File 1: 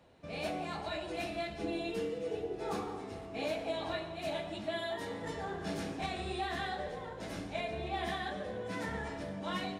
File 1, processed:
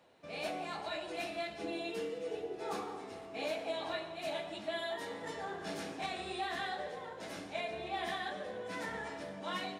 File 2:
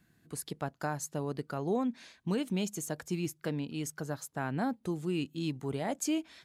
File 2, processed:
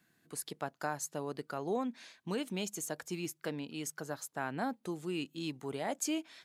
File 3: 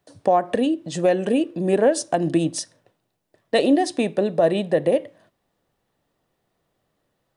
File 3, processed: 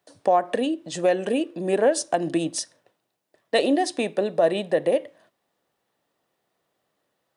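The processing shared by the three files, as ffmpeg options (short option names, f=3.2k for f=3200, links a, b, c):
-af "highpass=f=390:p=1"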